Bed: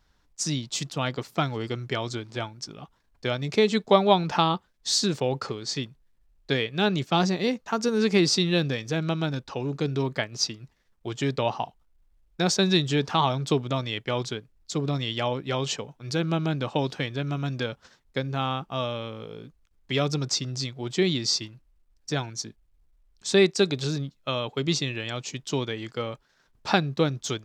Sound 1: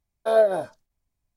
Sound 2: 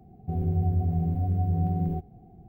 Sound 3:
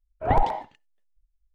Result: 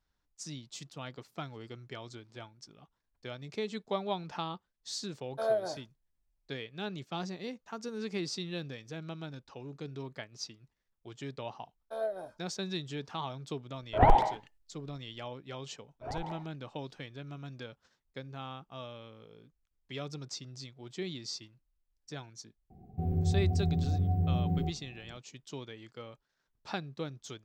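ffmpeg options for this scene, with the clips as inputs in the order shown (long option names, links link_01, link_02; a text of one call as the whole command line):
ffmpeg -i bed.wav -i cue0.wav -i cue1.wav -i cue2.wav -filter_complex "[1:a]asplit=2[link_01][link_02];[3:a]asplit=2[link_03][link_04];[0:a]volume=-15dB[link_05];[link_04]acompressor=threshold=-21dB:ratio=6:attack=3.2:release=140:knee=1:detection=peak[link_06];[link_01]atrim=end=1.36,asetpts=PTS-STARTPTS,volume=-11.5dB,afade=type=in:duration=0.004:curve=hsin,afade=type=out:start_time=1.356:duration=0.004:curve=hsin,adelay=5120[link_07];[link_02]atrim=end=1.36,asetpts=PTS-STARTPTS,volume=-16.5dB,afade=type=in:duration=0.004:curve=hsin,afade=type=out:start_time=1.356:duration=0.004:curve=hsin,adelay=11650[link_08];[link_03]atrim=end=1.54,asetpts=PTS-STARTPTS,volume=-0.5dB,afade=type=in:duration=0.004:curve=hsin,afade=type=out:start_time=1.536:duration=0.004:curve=hsin,adelay=13720[link_09];[link_06]atrim=end=1.54,asetpts=PTS-STARTPTS,volume=-13.5dB,afade=type=in:duration=0.004:curve=hsin,afade=type=out:start_time=1.536:duration=0.004:curve=hsin,adelay=15800[link_10];[2:a]atrim=end=2.48,asetpts=PTS-STARTPTS,volume=-3.5dB,afade=type=in:duration=0.004:curve=hsin,afade=type=out:start_time=2.476:duration=0.004:curve=hsin,adelay=22700[link_11];[link_05][link_07][link_08][link_09][link_10][link_11]amix=inputs=6:normalize=0" out.wav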